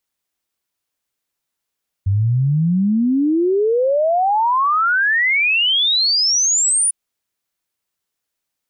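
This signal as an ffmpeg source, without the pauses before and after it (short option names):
-f lavfi -i "aevalsrc='0.224*clip(min(t,4.85-t)/0.01,0,1)*sin(2*PI*94*4.85/log(9800/94)*(exp(log(9800/94)*t/4.85)-1))':d=4.85:s=44100"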